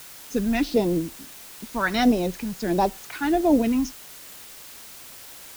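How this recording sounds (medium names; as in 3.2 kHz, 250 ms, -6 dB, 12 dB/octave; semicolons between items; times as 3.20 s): phasing stages 2, 1.5 Hz, lowest notch 500–1600 Hz; a quantiser's noise floor 8-bit, dither triangular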